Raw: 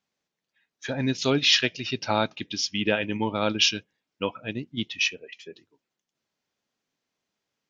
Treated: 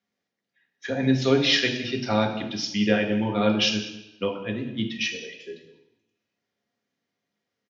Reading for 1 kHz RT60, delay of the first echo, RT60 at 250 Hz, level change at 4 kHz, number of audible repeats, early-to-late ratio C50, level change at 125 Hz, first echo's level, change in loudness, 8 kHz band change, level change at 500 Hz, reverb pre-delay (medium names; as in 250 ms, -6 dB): 0.90 s, 194 ms, 0.80 s, -1.5 dB, 1, 8.0 dB, +4.0 dB, -18.0 dB, +1.0 dB, no reading, +3.5 dB, 3 ms